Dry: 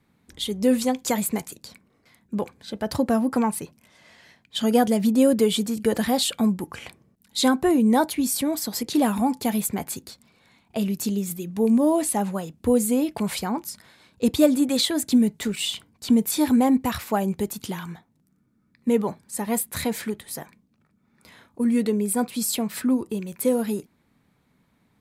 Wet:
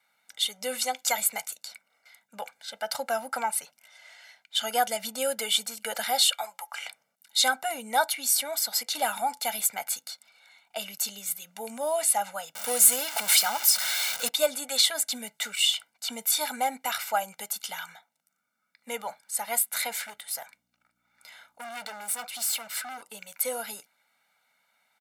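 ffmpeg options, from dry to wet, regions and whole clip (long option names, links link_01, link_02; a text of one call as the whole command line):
ffmpeg -i in.wav -filter_complex "[0:a]asettb=1/sr,asplit=3[link_01][link_02][link_03];[link_01]atrim=end=6.334[link_04];[link_02]atrim=start=6.33:end=6.8,asetpts=PTS-STARTPTS,afade=type=in:duration=0.004:curve=qsin,afade=type=out:start_time=0.466:duration=0.004:curve=qsin,highpass=frequency=820:width_type=q:width=1.6,bandreject=frequency=1500:width=11[link_05];[link_03]atrim=start=6.796[link_06];[link_04][link_05]acrossfade=duration=0.004:curve1=hsin:curve2=qsin[link_07];[link_07][link_06]acrossfade=duration=0.004:curve1=qsin:curve2=hsin,asettb=1/sr,asplit=3[link_08][link_09][link_10];[link_08]atrim=end=12.554[link_11];[link_09]atrim=start=12.55:end=14.29,asetpts=PTS-STARTPTS,afade=type=in:duration=0.004:curve=qsin,afade=type=out:start_time=1.736:duration=0.004:curve=qsin,aeval=exprs='val(0)+0.5*0.0355*sgn(val(0))':channel_layout=same,highshelf=frequency=3300:gain=7.5[link_12];[link_10]atrim=start=14.286[link_13];[link_11][link_12]acrossfade=duration=0.004:curve1=hsin:curve2=qsin[link_14];[link_14][link_13]acrossfade=duration=0.004:curve1=qsin:curve2=hsin,asettb=1/sr,asplit=3[link_15][link_16][link_17];[link_15]atrim=end=19.964[link_18];[link_16]atrim=start=19.96:end=23.02,asetpts=PTS-STARTPTS,afade=type=in:duration=0.004:curve=qsin,afade=type=out:start_time=3.056:duration=0.004:curve=qsin,aeval=exprs='val(0)+0.00355*(sin(2*PI*60*n/s)+sin(2*PI*2*60*n/s)/2+sin(2*PI*3*60*n/s)/3+sin(2*PI*4*60*n/s)/4+sin(2*PI*5*60*n/s)/5)':channel_layout=same,asoftclip=type=hard:threshold=-28dB[link_19];[link_17]atrim=start=23.016[link_20];[link_18][link_19]acrossfade=duration=0.004:curve1=hsin:curve2=qsin[link_21];[link_21][link_20]acrossfade=duration=0.004:curve1=qsin:curve2=hsin,highpass=1000,aecho=1:1:1.4:0.96" out.wav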